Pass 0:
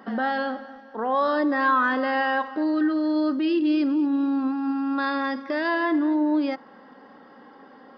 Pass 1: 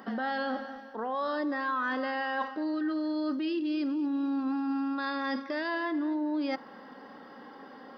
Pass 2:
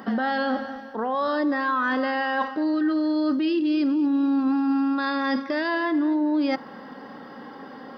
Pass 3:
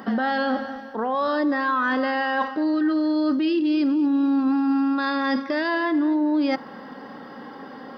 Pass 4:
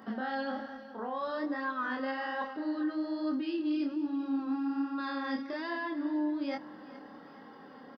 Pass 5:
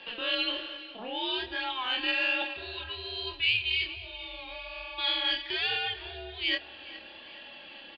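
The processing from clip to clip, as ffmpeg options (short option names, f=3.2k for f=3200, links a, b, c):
-af "highshelf=f=4.7k:g=8.5,areverse,acompressor=threshold=-29dB:ratio=6,areverse"
-af "equalizer=f=110:t=o:w=1.6:g=8,volume=6.5dB"
-af "acontrast=52,volume=-4.5dB"
-af "flanger=delay=22.5:depth=7.4:speed=1.2,aecho=1:1:419|838|1257|1676:0.126|0.0567|0.0255|0.0115,volume=-9dB"
-af "highpass=f=510:t=q:w=0.5412,highpass=f=510:t=q:w=1.307,lowpass=f=3.4k:t=q:w=0.5176,lowpass=f=3.4k:t=q:w=0.7071,lowpass=f=3.4k:t=q:w=1.932,afreqshift=-230,aexciter=amount=14.2:drive=8.6:freq=2.2k"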